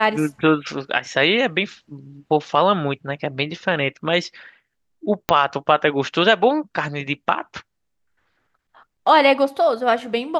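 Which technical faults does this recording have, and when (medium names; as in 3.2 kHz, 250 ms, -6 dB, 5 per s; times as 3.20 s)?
5.29 s: pop -3 dBFS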